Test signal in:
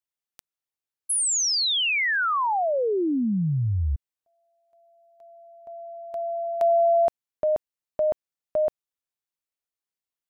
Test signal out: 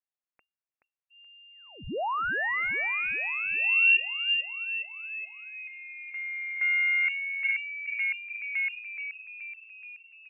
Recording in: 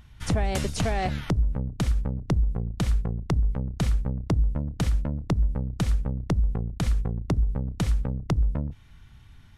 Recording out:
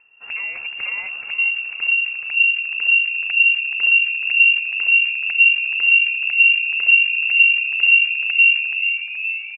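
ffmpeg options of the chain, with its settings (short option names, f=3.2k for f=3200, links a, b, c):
-filter_complex "[0:a]asubboost=boost=9:cutoff=65,asplit=2[a][b];[b]asplit=8[c][d][e][f][g][h][i][j];[c]adelay=426,afreqshift=-87,volume=-8dB[k];[d]adelay=852,afreqshift=-174,volume=-12.2dB[l];[e]adelay=1278,afreqshift=-261,volume=-16.3dB[m];[f]adelay=1704,afreqshift=-348,volume=-20.5dB[n];[g]adelay=2130,afreqshift=-435,volume=-24.6dB[o];[h]adelay=2556,afreqshift=-522,volume=-28.8dB[p];[i]adelay=2982,afreqshift=-609,volume=-32.9dB[q];[j]adelay=3408,afreqshift=-696,volume=-37.1dB[r];[k][l][m][n][o][p][q][r]amix=inputs=8:normalize=0[s];[a][s]amix=inputs=2:normalize=0,aeval=exprs='1.19*(cos(1*acos(clip(val(0)/1.19,-1,1)))-cos(1*PI/2))+0.168*(cos(4*acos(clip(val(0)/1.19,-1,1)))-cos(4*PI/2))':c=same,lowpass=f=2.4k:t=q:w=0.5098,lowpass=f=2.4k:t=q:w=0.6013,lowpass=f=2.4k:t=q:w=0.9,lowpass=f=2.4k:t=q:w=2.563,afreqshift=-2800,volume=-5.5dB"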